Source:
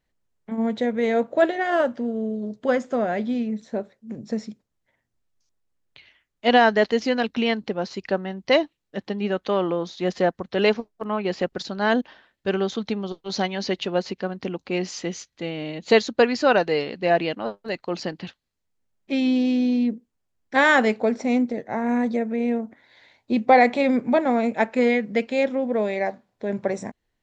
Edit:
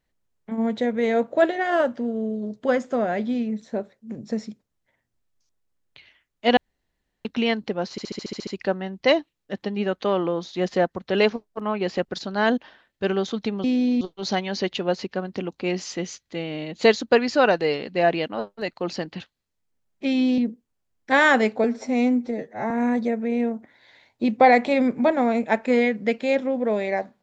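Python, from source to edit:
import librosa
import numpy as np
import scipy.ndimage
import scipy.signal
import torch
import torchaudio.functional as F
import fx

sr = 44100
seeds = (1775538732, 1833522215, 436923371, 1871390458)

y = fx.edit(x, sr, fx.room_tone_fill(start_s=6.57, length_s=0.68),
    fx.stutter(start_s=7.91, slice_s=0.07, count=9),
    fx.move(start_s=19.45, length_s=0.37, to_s=13.08),
    fx.stretch_span(start_s=21.08, length_s=0.71, factor=1.5), tone=tone)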